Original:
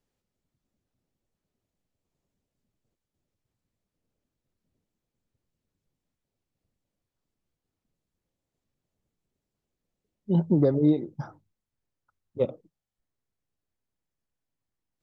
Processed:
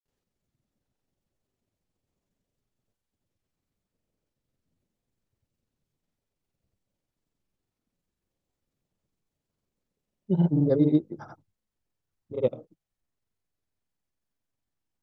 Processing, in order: granulator 92 ms, grains 22 per s, pitch spread up and down by 0 st; trim +1.5 dB

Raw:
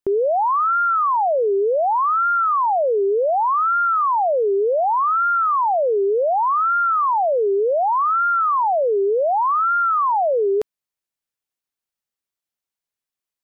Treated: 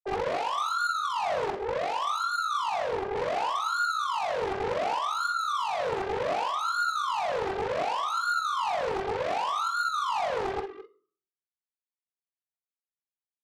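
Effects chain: formants replaced by sine waves; 1.50–3.16 s: high-pass 610 Hz 12 dB/octave; reverb removal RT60 0.86 s; in parallel at -0.5 dB: peak limiter -15 dBFS, peak gain reduction 5 dB; on the sum: compression 2.5:1, threshold -13 dBFS, peak gain reduction 3 dB; saturation -23.5 dBFS, distortion -7 dB; doubling 47 ms -6 dB; multi-tap echo 57/212 ms -8.5/-12.5 dB; on a send at -9.5 dB: reverberation RT60 0.50 s, pre-delay 4 ms; on the sum: loudspeaker Doppler distortion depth 0.76 ms; trim -6 dB

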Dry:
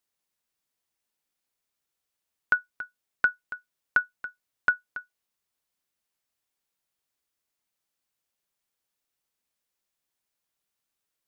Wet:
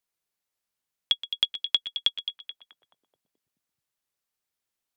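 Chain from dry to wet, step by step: wide varispeed 2.27×; repeats whose band climbs or falls 215 ms, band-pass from 3.6 kHz, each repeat -0.7 oct, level -9 dB; trim +1.5 dB

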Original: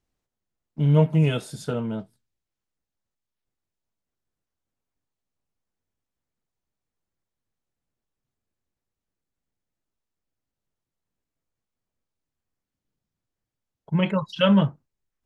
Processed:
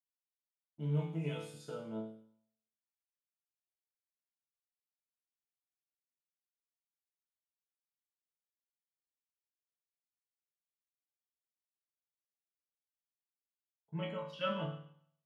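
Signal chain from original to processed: high-pass 170 Hz 12 dB/octave; expander -39 dBFS; chord resonator A2 sus4, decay 0.63 s; trim +3 dB

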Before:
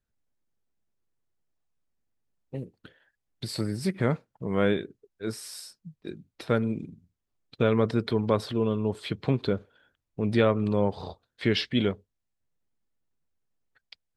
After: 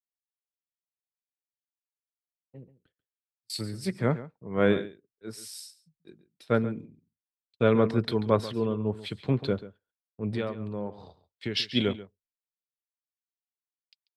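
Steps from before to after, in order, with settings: gate -51 dBFS, range -20 dB; 2.55–3.50 s: slow attack 543 ms; 10.29–11.75 s: compression 5:1, threshold -24 dBFS, peak gain reduction 7.5 dB; echo from a far wall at 24 m, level -12 dB; three bands expanded up and down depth 100%; trim -3 dB

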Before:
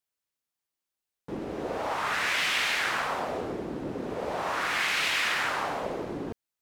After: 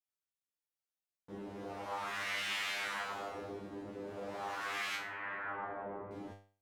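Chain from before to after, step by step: 4.95–6.11 s: low-pass 1.8 kHz 24 dB/octave; feedback comb 100 Hz, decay 0.4 s, harmonics all, mix 100%

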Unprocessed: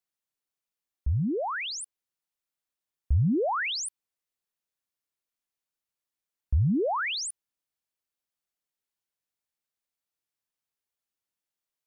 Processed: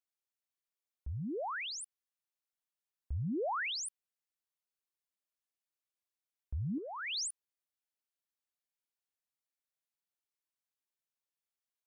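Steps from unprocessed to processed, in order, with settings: bass shelf 260 Hz -8 dB; 6.78–7.28 s: compressor with a negative ratio -32 dBFS, ratio -0.5; trim -6.5 dB

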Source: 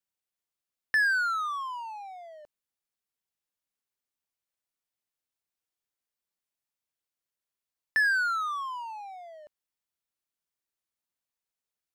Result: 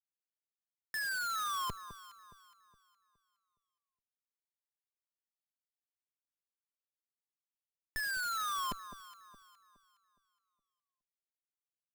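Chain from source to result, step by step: Schmitt trigger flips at -31 dBFS; echo whose repeats swap between lows and highs 208 ms, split 1.1 kHz, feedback 58%, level -11 dB

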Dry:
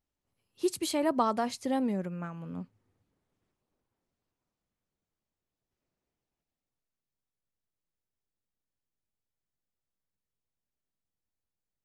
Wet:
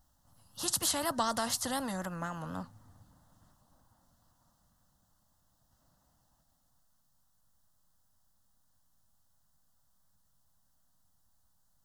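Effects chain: vibrato 4 Hz 83 cents; static phaser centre 980 Hz, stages 4; spectrum-flattening compressor 2:1

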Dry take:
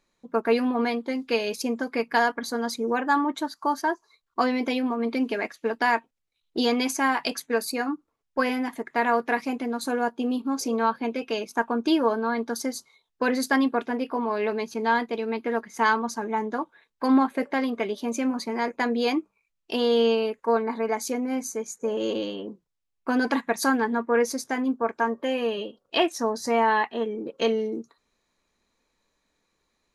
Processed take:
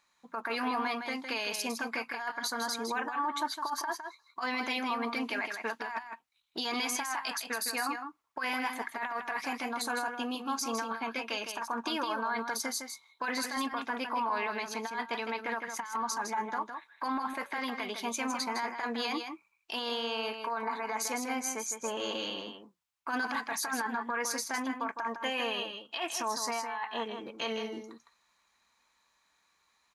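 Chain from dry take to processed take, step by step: high-pass 43 Hz; resonant low shelf 650 Hz -11.5 dB, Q 1.5; compressor with a negative ratio -27 dBFS, ratio -0.5; peak limiter -24 dBFS, peak gain reduction 12.5 dB; delay 159 ms -7 dB

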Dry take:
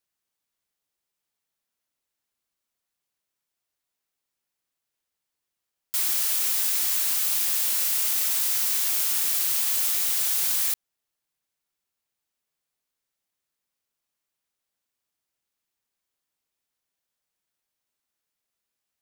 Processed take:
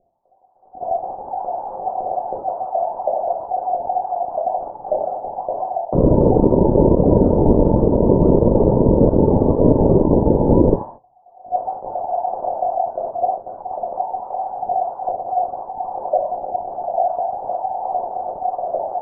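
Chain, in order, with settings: formants replaced by sine waves; recorder AGC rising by 36 dB/s; simulated room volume 80 m³, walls mixed, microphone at 1 m; in parallel at -3.5 dB: sine folder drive 9 dB, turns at -6.5 dBFS; on the sum: gate -31 dBFS, range -16 dB; reverse; compression 16:1, threshold -21 dBFS, peak gain reduction 13 dB; reverse; steep low-pass 570 Hz 48 dB/octave; loudness maximiser +35 dB; trim -1 dB

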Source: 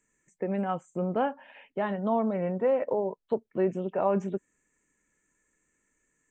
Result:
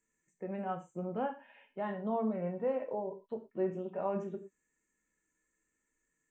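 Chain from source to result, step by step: harmonic-percussive split percussive -6 dB; gated-style reverb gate 140 ms falling, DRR 4.5 dB; trim -7.5 dB

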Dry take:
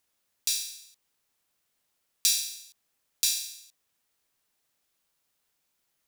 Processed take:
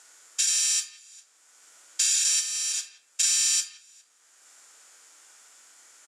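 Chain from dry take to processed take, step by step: spectrogram pixelated in time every 400 ms; treble shelf 2.7 kHz +3 dB; waveshaping leveller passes 1; harmony voices -7 st -3 dB; cabinet simulation 500–9600 Hz, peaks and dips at 1.4 kHz +6 dB, 2.7 kHz -3 dB, 3.9 kHz -6 dB, 7.1 kHz +9 dB; speakerphone echo 170 ms, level -19 dB; reverberation RT60 0.50 s, pre-delay 6 ms, DRR 1.5 dB; three bands compressed up and down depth 70%

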